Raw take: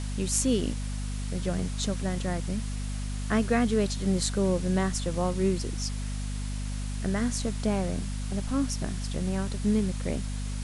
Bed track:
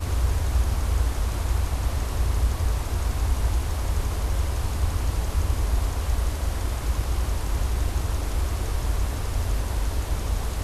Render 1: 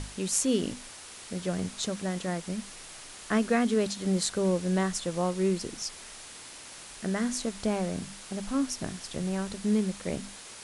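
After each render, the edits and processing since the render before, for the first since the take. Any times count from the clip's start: notches 50/100/150/200/250 Hz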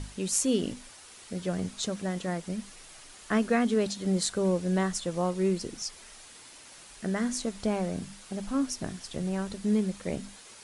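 denoiser 6 dB, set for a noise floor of -46 dBFS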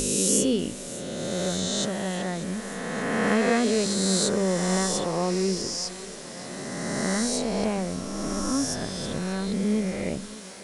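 spectral swells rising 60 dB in 2.59 s; thinning echo 0.589 s, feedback 78%, high-pass 210 Hz, level -16.5 dB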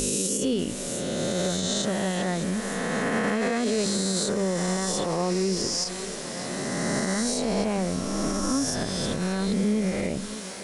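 in parallel at -2 dB: compressor, threshold -31 dBFS, peak gain reduction 12.5 dB; on the sum: limiter -16.5 dBFS, peak gain reduction 10.5 dB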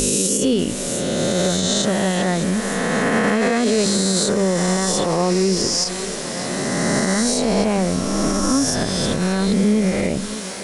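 gain +7.5 dB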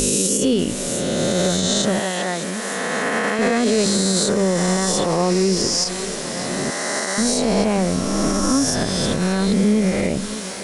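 1.99–3.39 HPF 480 Hz 6 dB/oct; 6.7–7.18 Bessel high-pass 590 Hz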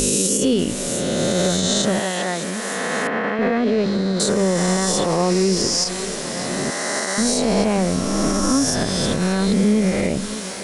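3.07–4.2 air absorption 320 m

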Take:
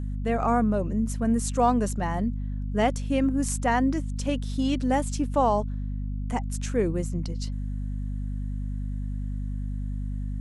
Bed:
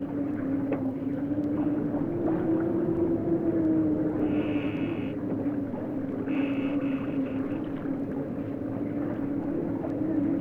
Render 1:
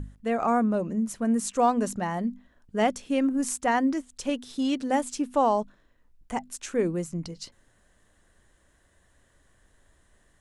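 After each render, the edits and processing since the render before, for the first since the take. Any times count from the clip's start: notches 50/100/150/200/250 Hz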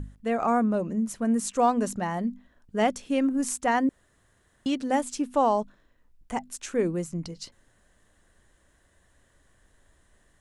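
3.89–4.66 room tone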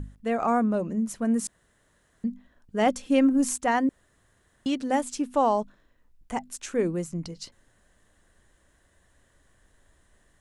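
1.47–2.24 room tone; 2.86–3.58 comb 3.8 ms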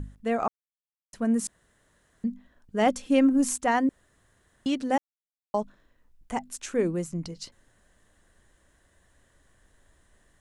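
0.48–1.13 mute; 4.98–5.54 mute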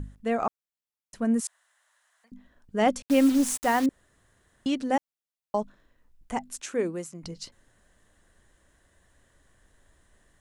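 1.41–2.32 inverse Chebyshev high-pass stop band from 370 Hz; 3.02–3.86 requantised 6-bit, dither none; 6.6–7.22 HPF 180 Hz -> 740 Hz 6 dB/oct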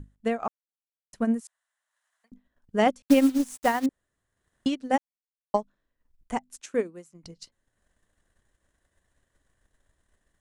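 transient shaper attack +7 dB, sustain -6 dB; upward expander 1.5:1, over -32 dBFS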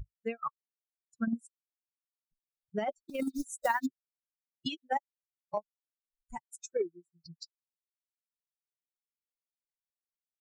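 per-bin expansion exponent 3; negative-ratio compressor -28 dBFS, ratio -0.5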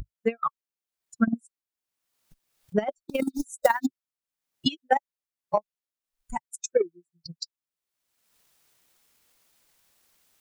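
transient shaper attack +12 dB, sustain 0 dB; upward compressor, threshold -42 dBFS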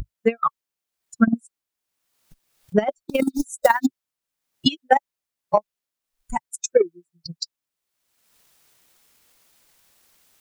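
gain +6 dB; limiter -2 dBFS, peak gain reduction 2.5 dB

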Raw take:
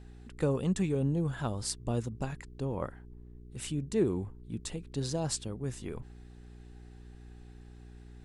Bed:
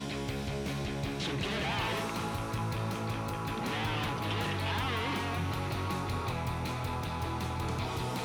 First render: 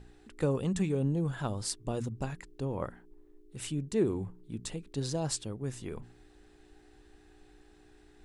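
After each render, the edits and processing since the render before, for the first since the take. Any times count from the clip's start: de-hum 60 Hz, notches 4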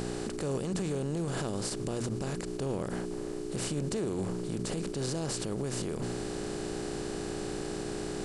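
per-bin compression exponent 0.4; limiter -24 dBFS, peak gain reduction 11.5 dB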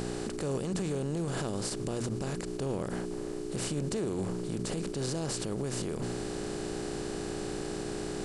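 nothing audible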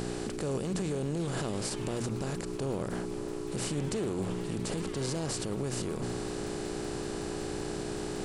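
add bed -15 dB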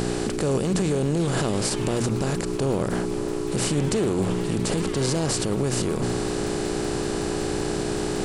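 gain +9.5 dB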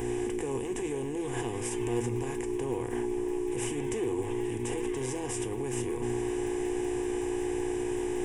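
fixed phaser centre 890 Hz, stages 8; resonator 120 Hz, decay 0.2 s, harmonics all, mix 70%

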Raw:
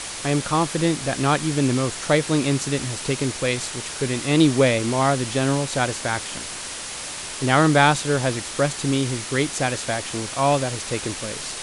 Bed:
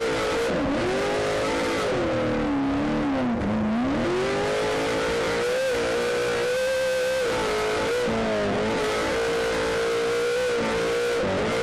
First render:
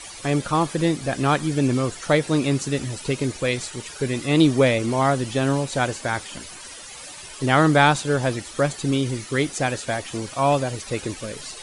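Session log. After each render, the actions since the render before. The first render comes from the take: denoiser 13 dB, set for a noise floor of -33 dBFS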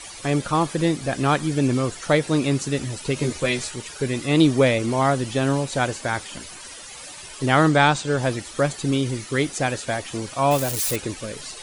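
3.15–3.74 doubler 13 ms -2.5 dB; 7.69–8.18 elliptic low-pass 8800 Hz; 10.51–10.96 switching spikes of -18.5 dBFS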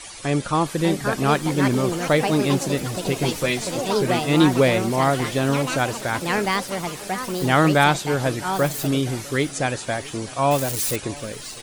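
echoes that change speed 0.659 s, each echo +5 st, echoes 3, each echo -6 dB; feedback echo 0.651 s, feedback 53%, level -22 dB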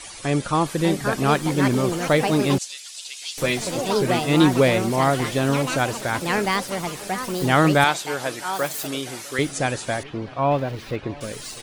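2.58–3.38 Butterworth band-pass 5500 Hz, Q 0.9; 7.84–9.39 HPF 670 Hz 6 dB/oct; 10.03–11.21 air absorption 330 m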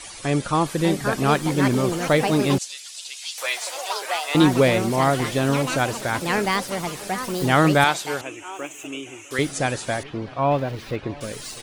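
3.18–4.35 HPF 680 Hz 24 dB/oct; 8.21–9.31 EQ curve 100 Hz 0 dB, 190 Hz -26 dB, 300 Hz +2 dB, 520 Hz -10 dB, 1200 Hz -8 dB, 1800 Hz -11 dB, 2700 Hz +4 dB, 4500 Hz -29 dB, 6600 Hz -2 dB, 12000 Hz -21 dB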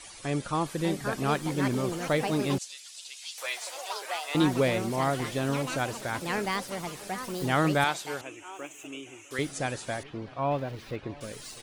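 gain -8 dB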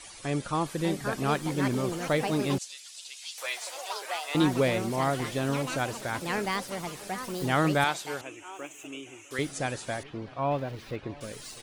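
nothing audible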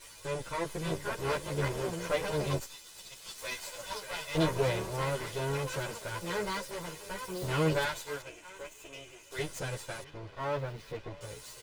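minimum comb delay 2 ms; endless flanger 10.8 ms +1.2 Hz

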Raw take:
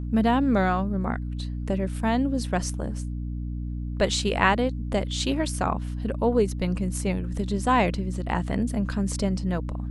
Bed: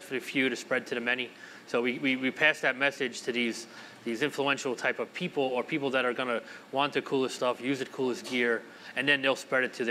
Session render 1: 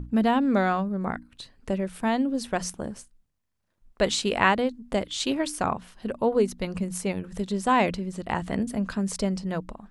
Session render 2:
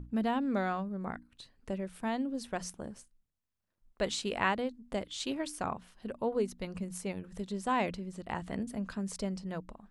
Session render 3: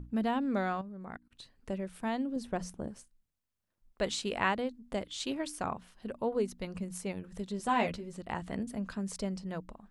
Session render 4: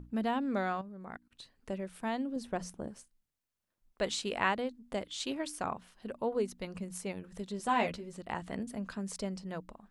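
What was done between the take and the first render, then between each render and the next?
notches 60/120/180/240/300 Hz
gain -9 dB
0.81–1.31 level quantiser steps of 22 dB; 2.36–2.88 tilt shelf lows +5 dB, about 860 Hz; 7.58–8.17 doubler 13 ms -4 dB
low shelf 180 Hz -5.5 dB

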